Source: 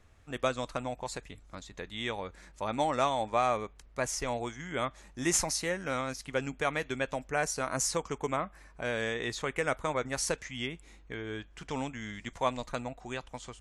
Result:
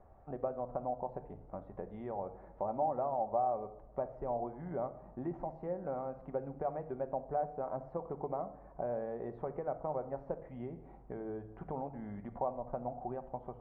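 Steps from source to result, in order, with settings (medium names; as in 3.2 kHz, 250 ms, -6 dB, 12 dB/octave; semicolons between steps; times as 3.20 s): compression 2.5:1, threshold -40 dBFS, peak gain reduction 11.5 dB; four-pole ladder low-pass 850 Hz, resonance 55%; simulated room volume 2200 m³, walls furnished, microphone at 1.1 m; tape noise reduction on one side only encoder only; trim +9 dB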